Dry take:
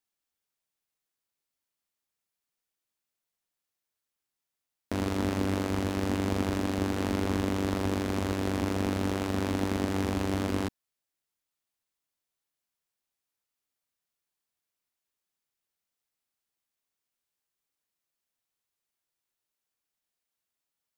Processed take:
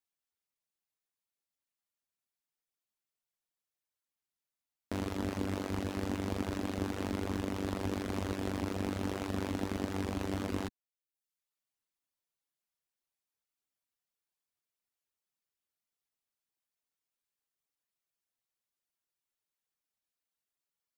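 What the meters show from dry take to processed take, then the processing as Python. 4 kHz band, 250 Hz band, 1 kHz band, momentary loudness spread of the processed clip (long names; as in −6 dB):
−6.5 dB, −6.5 dB, −6.5 dB, 1 LU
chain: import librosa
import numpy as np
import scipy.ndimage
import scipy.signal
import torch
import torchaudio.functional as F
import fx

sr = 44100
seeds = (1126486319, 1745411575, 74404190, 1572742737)

y = fx.tracing_dist(x, sr, depth_ms=0.051)
y = fx.dereverb_blind(y, sr, rt60_s=0.68)
y = fx.rider(y, sr, range_db=10, speed_s=0.5)
y = F.gain(torch.from_numpy(y), -4.0).numpy()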